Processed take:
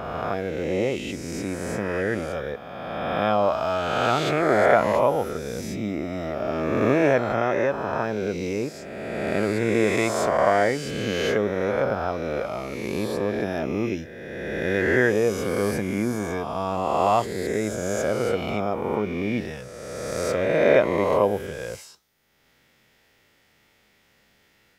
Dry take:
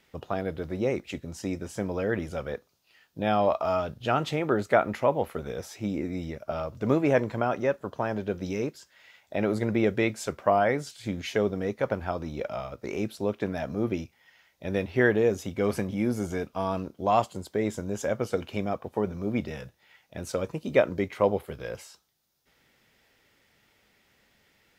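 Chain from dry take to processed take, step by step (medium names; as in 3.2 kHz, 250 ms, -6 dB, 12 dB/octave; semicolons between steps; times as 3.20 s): reverse spectral sustain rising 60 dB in 2.10 s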